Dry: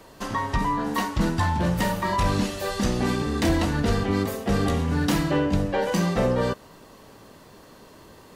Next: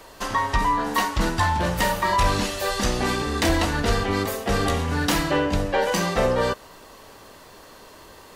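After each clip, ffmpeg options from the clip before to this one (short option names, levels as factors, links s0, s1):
-af "equalizer=f=170:t=o:w=2.3:g=-10,volume=1.88"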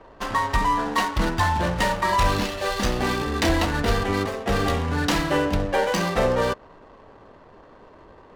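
-af "adynamicsmooth=sensitivity=7:basefreq=930"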